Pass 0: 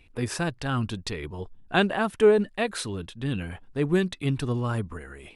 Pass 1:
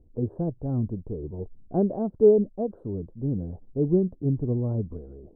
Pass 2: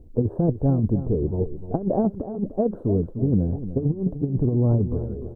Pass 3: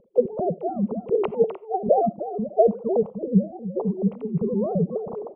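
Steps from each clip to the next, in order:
inverse Chebyshev low-pass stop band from 2 kHz, stop band 60 dB; trim +1.5 dB
compressor with a negative ratio -27 dBFS, ratio -0.5; on a send: feedback delay 300 ms, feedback 29%, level -12 dB; on the sum: trim +6.5 dB
formants replaced by sine waves; static phaser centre 690 Hz, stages 4; on a send at -20.5 dB: reverberation, pre-delay 3 ms; on the sum: trim +5 dB

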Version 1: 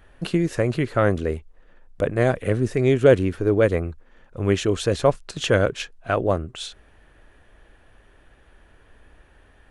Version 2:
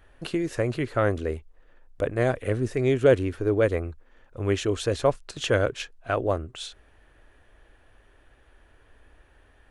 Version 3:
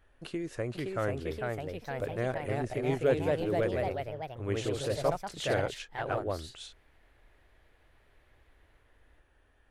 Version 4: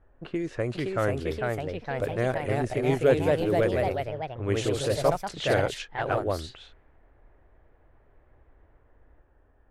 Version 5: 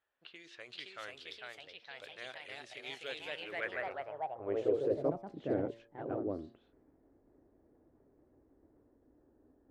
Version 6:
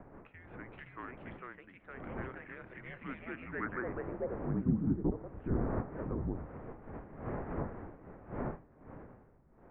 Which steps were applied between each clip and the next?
peaking EQ 180 Hz -11 dB 0.33 oct; trim -3.5 dB
ever faster or slower copies 556 ms, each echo +2 st, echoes 3; trim -9 dB
level-controlled noise filter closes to 980 Hz, open at -29 dBFS; treble shelf 11 kHz +5 dB; trim +5.5 dB
de-hum 114.6 Hz, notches 11; reverse; upward compressor, threshold -44 dBFS; reverse; band-pass sweep 3.6 kHz -> 280 Hz, 3.17–5.13 s
wind noise 610 Hz -44 dBFS; mistuned SSB -250 Hz 240–2300 Hz; low-pass that closes with the level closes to 1.6 kHz, closed at -32.5 dBFS; trim +1 dB

